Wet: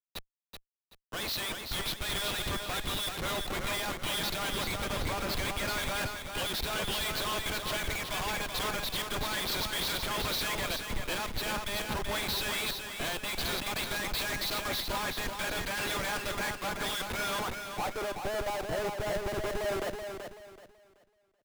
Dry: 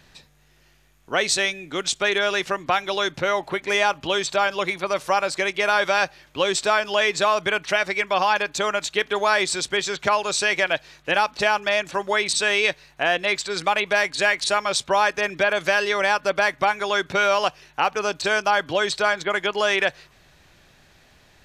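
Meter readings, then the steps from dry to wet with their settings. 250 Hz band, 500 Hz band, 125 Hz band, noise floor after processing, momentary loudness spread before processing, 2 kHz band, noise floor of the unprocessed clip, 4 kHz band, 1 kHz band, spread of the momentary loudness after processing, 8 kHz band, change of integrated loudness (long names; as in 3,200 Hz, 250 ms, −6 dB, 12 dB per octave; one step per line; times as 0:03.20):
−6.0 dB, −13.5 dB, +1.0 dB, −72 dBFS, 5 LU, −13.5 dB, −57 dBFS, −7.0 dB, −13.5 dB, 4 LU, −8.0 dB, −11.0 dB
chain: dynamic equaliser 2,800 Hz, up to −7 dB, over −34 dBFS, Q 0.83
band-pass filter sweep 3,700 Hz → 640 Hz, 0:17.03–0:17.79
in parallel at +1.5 dB: downward compressor 12 to 1, threshold −43 dBFS, peak gain reduction 23 dB
on the sum: Savitzky-Golay smoothing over 15 samples
comparator with hysteresis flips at −40.5 dBFS
on a send: repeating echo 380 ms, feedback 47%, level −4 dB
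on the sum: multiband upward and downward expander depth 70%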